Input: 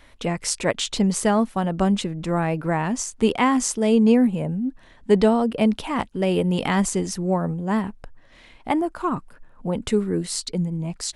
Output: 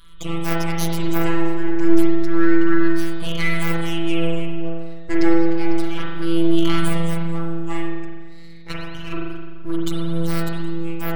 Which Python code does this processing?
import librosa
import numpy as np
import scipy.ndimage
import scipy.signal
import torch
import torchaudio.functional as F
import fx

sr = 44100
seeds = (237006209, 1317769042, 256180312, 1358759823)

y = fx.spec_ripple(x, sr, per_octave=0.63, drift_hz=-0.3, depth_db=18)
y = fx.band_shelf(y, sr, hz=520.0, db=-13.5, octaves=1.7)
y = fx.robotise(y, sr, hz=167.0)
y = np.abs(y)
y = fx.rev_spring(y, sr, rt60_s=1.4, pass_ms=(42,), chirp_ms=70, drr_db=-3.5)
y = F.gain(torch.from_numpy(y), -1.5).numpy()